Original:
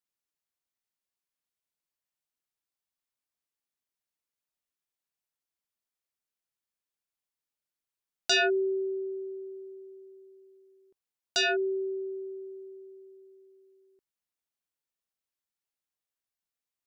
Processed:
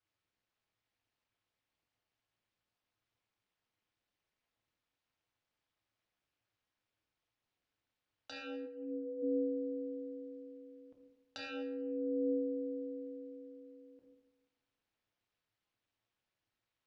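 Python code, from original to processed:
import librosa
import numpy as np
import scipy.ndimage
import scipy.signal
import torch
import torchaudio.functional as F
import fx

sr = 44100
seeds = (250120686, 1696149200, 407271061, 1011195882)

y = scipy.signal.sosfilt(scipy.signal.butter(2, 3600.0, 'lowpass', fs=sr, output='sos'), x)
y = fx.over_compress(y, sr, threshold_db=-39.0, ratio=-1.0)
y = fx.room_shoebox(y, sr, seeds[0], volume_m3=290.0, walls='mixed', distance_m=1.2)
y = y * np.sin(2.0 * np.pi * 110.0 * np.arange(len(y)) / sr)
y = fx.detune_double(y, sr, cents=12, at=(8.65, 9.22), fade=0.02)
y = y * 10.0 ** (1.5 / 20.0)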